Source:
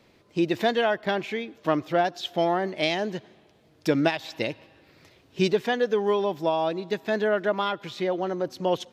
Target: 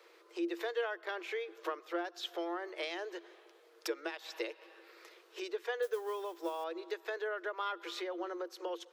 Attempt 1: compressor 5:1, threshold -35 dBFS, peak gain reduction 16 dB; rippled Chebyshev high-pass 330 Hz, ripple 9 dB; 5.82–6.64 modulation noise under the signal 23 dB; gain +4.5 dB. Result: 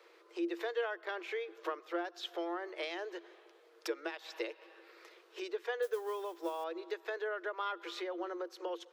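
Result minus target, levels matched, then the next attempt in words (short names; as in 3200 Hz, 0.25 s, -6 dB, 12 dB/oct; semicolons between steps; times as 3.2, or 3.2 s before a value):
8000 Hz band -3.0 dB
compressor 5:1, threshold -35 dBFS, peak gain reduction 16 dB; rippled Chebyshev high-pass 330 Hz, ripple 9 dB; high shelf 5800 Hz +6 dB; 5.82–6.64 modulation noise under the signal 23 dB; gain +4.5 dB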